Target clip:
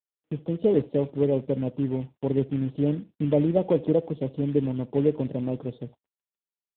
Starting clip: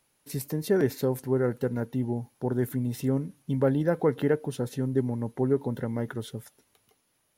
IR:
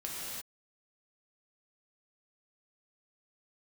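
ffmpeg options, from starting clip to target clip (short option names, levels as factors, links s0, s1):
-af "asuperstop=centerf=1700:order=4:qfactor=0.85,tiltshelf=f=880:g=6,aecho=1:1:74:0.0794,aresample=11025,acrusher=bits=5:mode=log:mix=0:aa=0.000001,aresample=44100,asetrate=48069,aresample=44100,lowshelf=f=150:g=-8.5,agate=range=0.00794:threshold=0.00794:ratio=16:detection=peak" -ar 8000 -c:a libopencore_amrnb -b:a 7950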